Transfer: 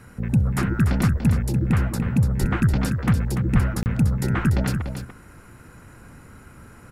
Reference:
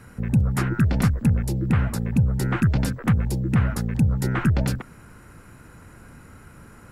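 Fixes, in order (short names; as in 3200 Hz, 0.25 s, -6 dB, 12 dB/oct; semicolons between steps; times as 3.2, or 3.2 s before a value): de-plosive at 2.4/3.53; interpolate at 3.83, 29 ms; inverse comb 0.291 s -8 dB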